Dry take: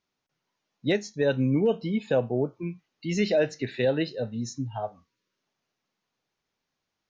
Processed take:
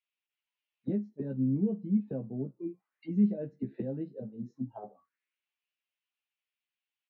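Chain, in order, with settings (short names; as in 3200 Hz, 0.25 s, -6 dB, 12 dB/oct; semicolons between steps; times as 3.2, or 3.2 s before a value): high shelf 2800 Hz -8.5 dB; auto-wah 200–2800 Hz, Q 3.5, down, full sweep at -26 dBFS; doubler 15 ms -4 dB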